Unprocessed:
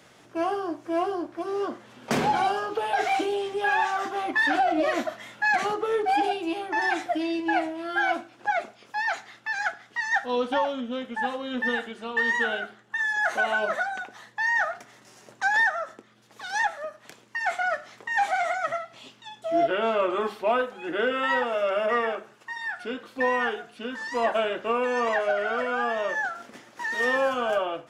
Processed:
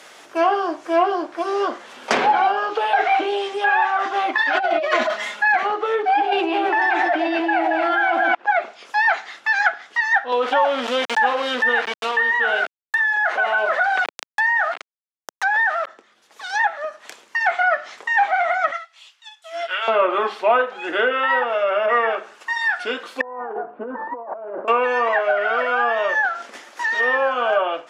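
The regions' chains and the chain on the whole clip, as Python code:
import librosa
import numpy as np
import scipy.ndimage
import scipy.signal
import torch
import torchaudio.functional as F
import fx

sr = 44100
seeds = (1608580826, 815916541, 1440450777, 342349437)

y = fx.chain(x, sr, fx.comb(ms=4.8, depth=0.73),
    fx.over_compress(threshold_db=-28.0, ratio=-1.0), at=(4.36, 5.43))
y = fx.chain(y, sr, fx.sample_gate(floor_db=-45.0),
    fx.echo_alternate(ms=112, hz=800.0, feedback_pct=60, wet_db=-5.0),
    fx.env_flatten(amount_pct=100), at=(6.32, 8.35))
y = fx.chain(y, sr, fx.sample_gate(floor_db=-36.0),
    fx.highpass(hz=250.0, slope=12),
    fx.env_flatten(amount_pct=50), at=(10.32, 15.87))
y = fx.chain(y, sr, fx.highpass(hz=1400.0, slope=12),
    fx.upward_expand(threshold_db=-55.0, expansion=1.5), at=(18.71, 19.88))
y = fx.chain(y, sr, fx.halfwave_gain(db=-3.0),
    fx.lowpass(hz=1000.0, slope=24),
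    fx.over_compress(threshold_db=-38.0, ratio=-1.0), at=(23.21, 24.68))
y = scipy.signal.sosfilt(scipy.signal.bessel(2, 590.0, 'highpass', norm='mag', fs=sr, output='sos'), y)
y = fx.env_lowpass_down(y, sr, base_hz=2400.0, full_db=-23.5)
y = fx.rider(y, sr, range_db=4, speed_s=0.5)
y = y * librosa.db_to_amplitude(8.0)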